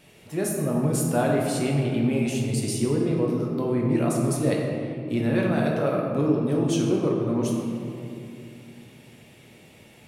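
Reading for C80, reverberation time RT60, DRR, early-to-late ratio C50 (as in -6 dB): 2.5 dB, 2.6 s, -2.5 dB, 1.0 dB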